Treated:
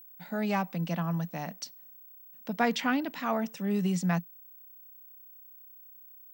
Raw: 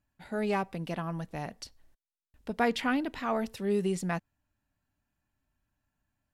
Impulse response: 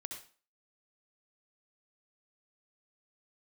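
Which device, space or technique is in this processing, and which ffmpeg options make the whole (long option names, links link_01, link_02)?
old television with a line whistle: -filter_complex "[0:a]asettb=1/sr,asplit=3[link_01][link_02][link_03];[link_01]atrim=end=3.354[link_04];[link_02]atrim=start=3.35:end=3.75,asetpts=PTS-STARTPTS,afade=type=in:duration=0.004:curve=qsin,afade=type=out:start_time=0.396:duration=0.004:curve=qsin,equalizer=frequency=4300:width_type=o:width=0.39:gain=-11[link_05];[link_03]atrim=start=3.746[link_06];[link_04][link_05]acrossfade=duration=0.004:curve1=hsin:curve2=qsin[link_07];[link_07][link_06]acrossfade=duration=0.004:curve1=qsin:curve2=hsin,highpass=frequency=170:width=0.5412,highpass=frequency=170:width=1.3066,equalizer=frequency=170:width_type=q:width=4:gain=9,equalizer=frequency=390:width_type=q:width=4:gain=-9,equalizer=frequency=5900:width_type=q:width=4:gain=6,lowpass=frequency=8400:width=0.5412,lowpass=frequency=8400:width=1.3066,aeval=exprs='val(0)+0.00316*sin(2*PI*15734*n/s)':channel_layout=same,volume=1dB"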